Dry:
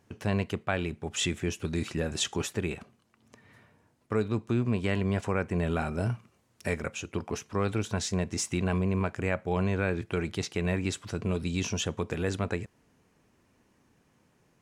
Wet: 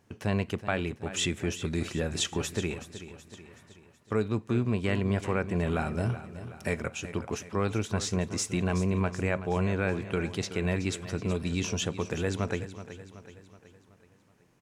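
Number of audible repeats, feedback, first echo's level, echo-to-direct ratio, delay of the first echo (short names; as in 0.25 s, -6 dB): 4, 51%, -13.0 dB, -11.5 dB, 0.375 s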